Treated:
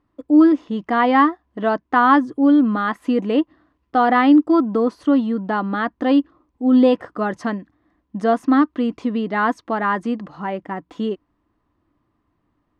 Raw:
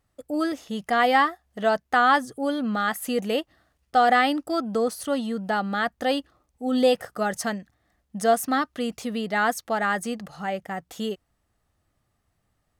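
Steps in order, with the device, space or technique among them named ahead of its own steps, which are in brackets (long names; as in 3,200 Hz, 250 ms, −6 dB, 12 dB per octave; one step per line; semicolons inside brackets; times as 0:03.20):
inside a cardboard box (low-pass filter 3,100 Hz 12 dB per octave; hollow resonant body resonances 300/1,000 Hz, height 16 dB, ringing for 35 ms)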